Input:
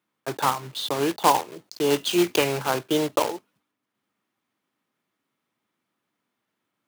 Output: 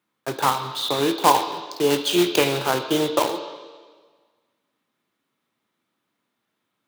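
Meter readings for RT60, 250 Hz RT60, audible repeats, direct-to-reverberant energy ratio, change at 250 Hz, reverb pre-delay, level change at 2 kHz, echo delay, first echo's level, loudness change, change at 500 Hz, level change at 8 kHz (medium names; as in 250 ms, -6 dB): 1.5 s, 1.6 s, no echo, 8.0 dB, +2.5 dB, 8 ms, +2.5 dB, no echo, no echo, +2.5 dB, +2.5 dB, +2.0 dB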